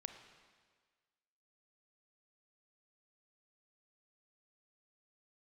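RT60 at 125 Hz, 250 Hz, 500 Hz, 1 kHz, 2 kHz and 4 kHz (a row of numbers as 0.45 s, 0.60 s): 1.5 s, 1.5 s, 1.6 s, 1.6 s, 1.6 s, 1.5 s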